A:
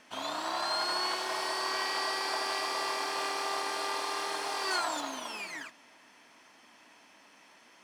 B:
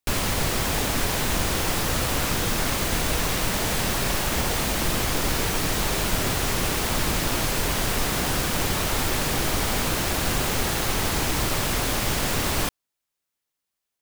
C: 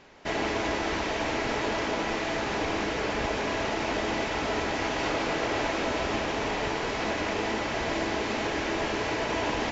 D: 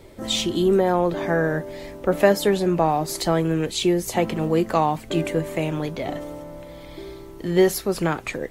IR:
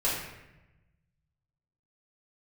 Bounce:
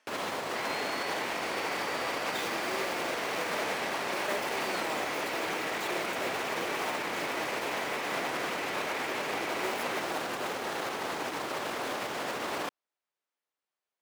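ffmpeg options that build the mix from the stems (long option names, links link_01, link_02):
-filter_complex "[0:a]volume=-10.5dB[link_01];[1:a]lowpass=frequency=1400:poles=1,alimiter=limit=-22dB:level=0:latency=1,volume=1dB[link_02];[2:a]equalizer=frequency=2200:width_type=o:width=0.91:gain=10.5,alimiter=limit=-19.5dB:level=0:latency=1,adelay=300,volume=-10dB[link_03];[3:a]acrusher=bits=3:mix=0:aa=0.000001,adelay=2050,volume=-19dB[link_04];[link_01][link_02][link_03][link_04]amix=inputs=4:normalize=0,highpass=400"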